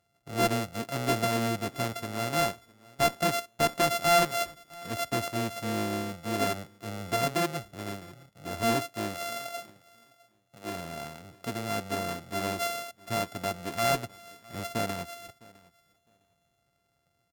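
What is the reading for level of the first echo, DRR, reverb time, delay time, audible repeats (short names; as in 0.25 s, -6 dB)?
-23.0 dB, none, none, 0.658 s, 1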